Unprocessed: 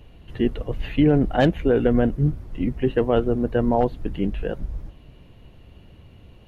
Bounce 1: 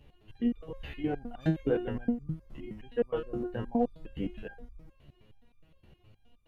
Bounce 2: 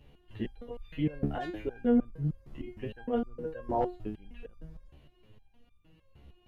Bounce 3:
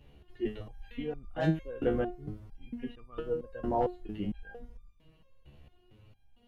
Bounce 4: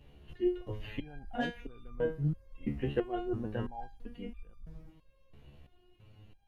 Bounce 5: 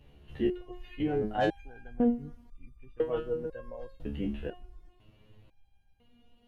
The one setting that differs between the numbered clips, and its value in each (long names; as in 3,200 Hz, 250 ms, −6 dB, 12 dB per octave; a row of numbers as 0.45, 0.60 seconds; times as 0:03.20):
step-sequenced resonator, speed: 9.6, 6.5, 4.4, 3, 2 Hertz